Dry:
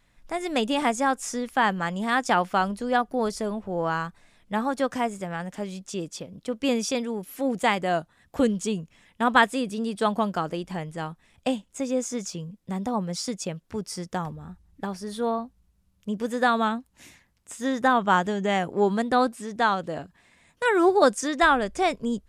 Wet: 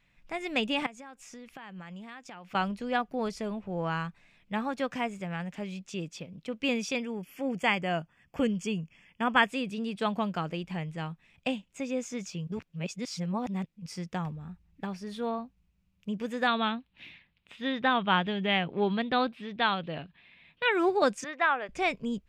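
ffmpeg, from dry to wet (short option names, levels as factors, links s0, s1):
-filter_complex "[0:a]asettb=1/sr,asplit=3[s0][s1][s2];[s0]atrim=end=0.864[s3];[s1]atrim=start=0.86:end=2.55,asetpts=PTS-STARTPTS,afade=t=in:d=0.004:c=qsin,afade=t=out:st=1.686:d=0.004:c=qsin,acompressor=threshold=0.0141:ratio=8:attack=3.2:release=140:knee=1:detection=peak[s4];[s2]atrim=start=2.546[s5];[s3][s4]acrossfade=d=0.004:c1=hsin:c2=qsin[s6];[s6][s5]acrossfade=d=0.004:c1=qsin:c2=hsin,asettb=1/sr,asplit=3[s7][s8][s9];[s7]atrim=end=6.964[s10];[s8]atrim=start=6.96:end=9.49,asetpts=PTS-STARTPTS,afade=t=in:d=0.004:c=qsin,afade=t=out:st=2.526:d=0.004:c=qsin,asuperstop=centerf=3900:order=8:qfactor=4.7[s11];[s9]atrim=start=9.486[s12];[s10][s11]acrossfade=d=0.004:c1=hsin:c2=qsin[s13];[s13][s12]acrossfade=d=0.004:c1=qsin:c2=hsin,asettb=1/sr,asplit=3[s14][s15][s16];[s14]atrim=end=16.474[s17];[s15]atrim=start=16.47:end=20.72,asetpts=PTS-STARTPTS,afade=t=in:d=0.004:c=qsin,afade=t=out:st=4.246:d=0.004:c=qsin,highshelf=f=5100:t=q:w=3:g=-12.5[s18];[s16]atrim=start=20.716[s19];[s17][s18]acrossfade=d=0.004:c1=hsin:c2=qsin[s20];[s20][s19]acrossfade=d=0.004:c1=qsin:c2=hsin,asettb=1/sr,asplit=3[s21][s22][s23];[s21]atrim=end=21.244[s24];[s22]atrim=start=21.24:end=21.69,asetpts=PTS-STARTPTS,afade=t=in:d=0.004:c=qsin,afade=t=out:st=0.446:d=0.004:c=qsin,highpass=550,lowpass=2300[s25];[s23]atrim=start=21.686[s26];[s24][s25]acrossfade=d=0.004:c1=hsin:c2=qsin[s27];[s27][s26]acrossfade=d=0.004:c1=qsin:c2=hsin,asplit=3[s28][s29][s30];[s28]atrim=end=12.472[s31];[s29]atrim=start=12.468:end=13.862,asetpts=PTS-STARTPTS,areverse[s32];[s30]atrim=start=13.858[s33];[s31][s32]acrossfade=d=0.004:c1=hsin:c2=hsin[s34];[s34][s33]acrossfade=d=0.004:c1=hsin:c2=hsin,equalizer=f=160:t=o:w=0.67:g=7,equalizer=f=2500:t=o:w=0.67:g=11,equalizer=f=10000:t=o:w=0.67:g=-9,volume=0.447"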